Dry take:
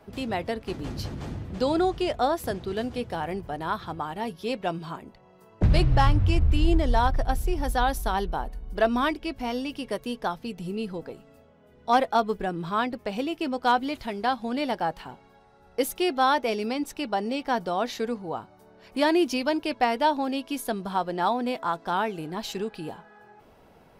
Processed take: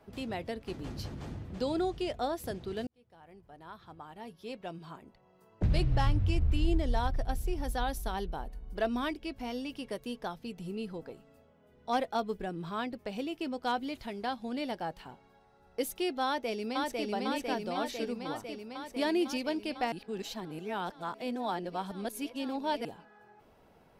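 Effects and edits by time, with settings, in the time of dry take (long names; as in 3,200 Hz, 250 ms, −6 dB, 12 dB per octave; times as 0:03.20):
0:02.87–0:06.00: fade in
0:16.25–0:17.08: delay throw 500 ms, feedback 75%, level −1.5 dB
0:19.92–0:22.85: reverse
whole clip: dynamic equaliser 1,100 Hz, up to −5 dB, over −38 dBFS, Q 1; level −6.5 dB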